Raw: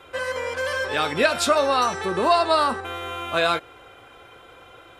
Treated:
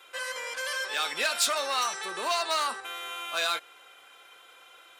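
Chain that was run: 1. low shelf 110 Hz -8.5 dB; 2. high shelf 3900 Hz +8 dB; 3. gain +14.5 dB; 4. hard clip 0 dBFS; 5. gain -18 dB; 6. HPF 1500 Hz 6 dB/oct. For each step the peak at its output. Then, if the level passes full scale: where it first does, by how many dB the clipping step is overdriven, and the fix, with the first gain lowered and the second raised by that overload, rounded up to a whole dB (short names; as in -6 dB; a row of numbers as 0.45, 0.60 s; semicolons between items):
-7.0, -4.5, +10.0, 0.0, -18.0, -14.5 dBFS; step 3, 10.0 dB; step 3 +4.5 dB, step 5 -8 dB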